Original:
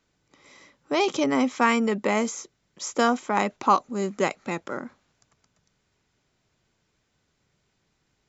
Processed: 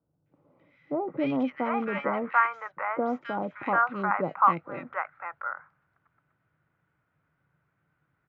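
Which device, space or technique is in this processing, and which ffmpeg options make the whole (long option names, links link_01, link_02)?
bass cabinet: -filter_complex "[0:a]highpass=89,equalizer=frequency=150:width_type=q:width=4:gain=5,equalizer=frequency=220:width_type=q:width=4:gain=-9,equalizer=frequency=400:width_type=q:width=4:gain=-9,equalizer=frequency=1400:width_type=q:width=4:gain=8,lowpass=frequency=2100:width=0.5412,lowpass=frequency=2100:width=1.3066,acrossover=split=730|2200[link_01][link_02][link_03];[link_03]adelay=260[link_04];[link_02]adelay=740[link_05];[link_01][link_05][link_04]amix=inputs=3:normalize=0"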